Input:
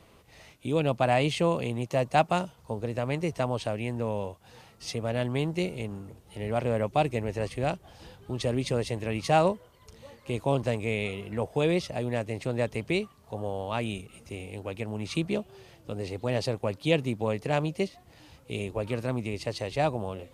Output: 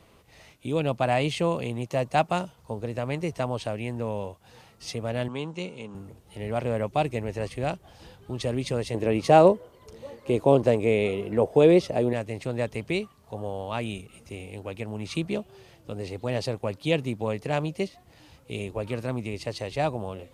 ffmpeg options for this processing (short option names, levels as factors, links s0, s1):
-filter_complex "[0:a]asettb=1/sr,asplit=3[s0][s1][s2];[s0]atrim=end=5.284[s3];[s1]atrim=start=5.28:end=5.95,asetpts=PTS-STARTPTS,afade=t=in:d=0.004:c=qsin,afade=t=out:st=0.666:d=0.004:c=qsin,highpass=210,equalizer=f=350:t=q:w=4:g=-7,equalizer=f=670:t=q:w=4:g=-9,equalizer=f=1000:t=q:w=4:g=4,equalizer=f=1900:t=q:w=4:g=-8,equalizer=f=4700:t=q:w=4:g=-7,lowpass=f=7600:w=0.5412,lowpass=f=7600:w=1.3066[s4];[s2]atrim=start=5.946[s5];[s3][s4]acrossfade=d=0.004:c1=hsin:c2=qsin[s6];[s6][s5]acrossfade=d=0.004:c1=qsin:c2=hsin,asettb=1/sr,asplit=3[s7][s8][s9];[s7]atrim=end=8.944[s10];[s8]atrim=start=8.94:end=12.13,asetpts=PTS-STARTPTS,afade=t=in:d=0.004:c=qsin,afade=t=out:st=3.186:d=0.004:c=qsin,equalizer=f=410:t=o:w=2:g=10[s11];[s9]atrim=start=12.126[s12];[s10][s11]acrossfade=d=0.004:c1=hsin:c2=qsin[s13];[s13][s12]acrossfade=d=0.004:c1=qsin:c2=hsin"